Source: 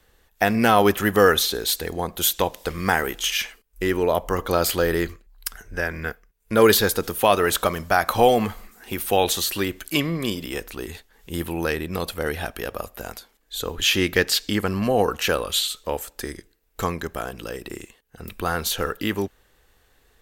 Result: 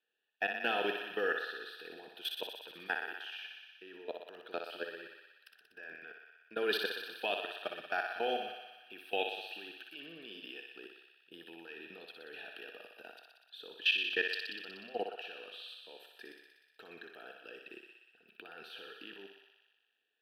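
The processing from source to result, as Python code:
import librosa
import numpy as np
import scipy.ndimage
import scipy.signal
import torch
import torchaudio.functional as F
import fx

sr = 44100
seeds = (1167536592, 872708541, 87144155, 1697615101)

p1 = scipy.signal.sosfilt(scipy.signal.butter(2, 270.0, 'highpass', fs=sr, output='sos'), x)
p2 = fx.level_steps(p1, sr, step_db=19)
p3 = fx.vowel_filter(p2, sr, vowel='e')
p4 = fx.fixed_phaser(p3, sr, hz=2000.0, stages=6)
p5 = p4 + fx.echo_thinned(p4, sr, ms=61, feedback_pct=78, hz=420.0, wet_db=-5, dry=0)
y = p5 * 10.0 ** (8.0 / 20.0)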